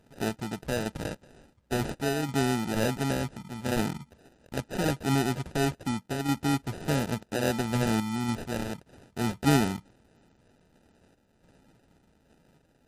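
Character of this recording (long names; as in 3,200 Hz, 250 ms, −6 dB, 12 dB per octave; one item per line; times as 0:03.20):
sample-and-hold tremolo
aliases and images of a low sample rate 1,100 Hz, jitter 0%
MP3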